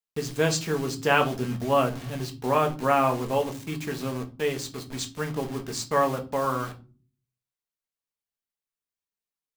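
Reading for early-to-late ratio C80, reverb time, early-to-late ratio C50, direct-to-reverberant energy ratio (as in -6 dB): 22.0 dB, not exponential, 16.0 dB, 3.0 dB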